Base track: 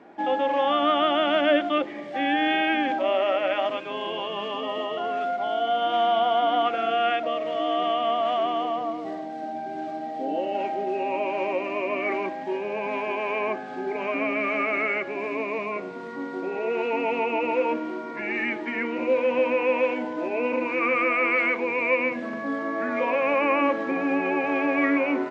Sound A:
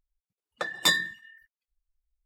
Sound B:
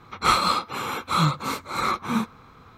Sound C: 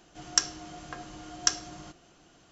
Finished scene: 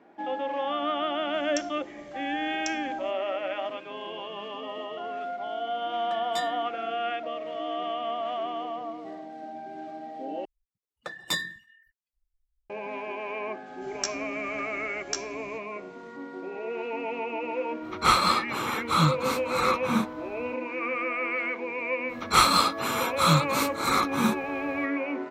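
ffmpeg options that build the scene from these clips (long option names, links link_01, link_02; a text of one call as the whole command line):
ffmpeg -i bed.wav -i cue0.wav -i cue1.wav -i cue2.wav -filter_complex "[3:a]asplit=2[link_01][link_02];[1:a]asplit=2[link_03][link_04];[2:a]asplit=2[link_05][link_06];[0:a]volume=-7dB[link_07];[link_01]bass=frequency=250:gain=5,treble=frequency=4000:gain=6[link_08];[link_03]lowpass=11000[link_09];[link_04]lowshelf=frequency=150:gain=9[link_10];[link_02]asplit=2[link_11][link_12];[link_12]adelay=14,volume=-5dB[link_13];[link_11][link_13]amix=inputs=2:normalize=0[link_14];[link_06]highshelf=frequency=5400:gain=8[link_15];[link_07]asplit=2[link_16][link_17];[link_16]atrim=end=10.454[link_18];[link_10]atrim=end=2.25,asetpts=PTS-STARTPTS,volume=-6.5dB[link_19];[link_17]atrim=start=12.696[link_20];[link_08]atrim=end=2.51,asetpts=PTS-STARTPTS,volume=-17dB,afade=type=in:duration=0.004:curve=hsin,afade=type=out:start_time=2.506:duration=0.004:curve=hsin,adelay=1190[link_21];[link_09]atrim=end=2.25,asetpts=PTS-STARTPTS,volume=-13.5dB,afade=type=in:duration=0.004:curve=hsin,afade=type=out:start_time=2.246:duration=0.004:curve=hsin,adelay=5500[link_22];[link_14]atrim=end=2.51,asetpts=PTS-STARTPTS,volume=-8dB,afade=type=in:duration=0.004:curve=hsin,afade=type=out:start_time=2.506:duration=0.004:curve=hsin,adelay=13660[link_23];[link_05]atrim=end=2.77,asetpts=PTS-STARTPTS,volume=-1dB,afade=type=in:duration=0.05,afade=type=out:start_time=2.72:duration=0.05,adelay=784980S[link_24];[link_15]atrim=end=2.77,asetpts=PTS-STARTPTS,volume=-0.5dB,afade=type=in:duration=0.004:curve=hsin,afade=type=out:start_time=2.766:duration=0.004:curve=hsin,adelay=22090[link_25];[link_18][link_19]acrossfade=duration=0.004:curve1=hsin:curve2=hsin[link_26];[link_26][link_20]acrossfade=duration=0.004:curve1=hsin:curve2=hsin[link_27];[link_27][link_21][link_22][link_23][link_24][link_25]amix=inputs=6:normalize=0" out.wav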